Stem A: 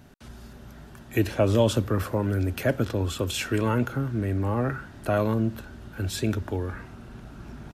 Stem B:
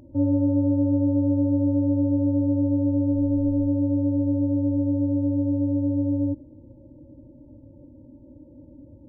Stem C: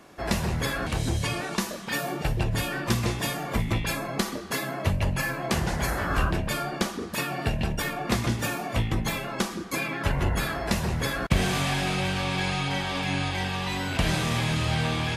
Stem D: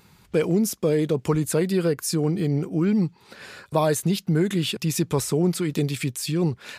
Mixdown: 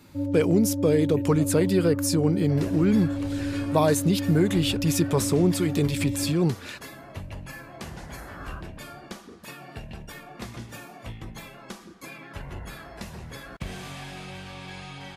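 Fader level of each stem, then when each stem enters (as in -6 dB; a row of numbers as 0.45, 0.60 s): -19.5, -7.0, -12.5, 0.0 dB; 0.00, 0.00, 2.30, 0.00 s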